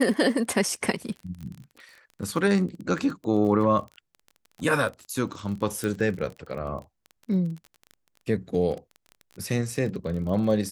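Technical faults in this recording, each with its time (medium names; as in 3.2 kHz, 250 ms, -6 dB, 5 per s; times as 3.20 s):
crackle 25 per s -34 dBFS
5.84 s: pop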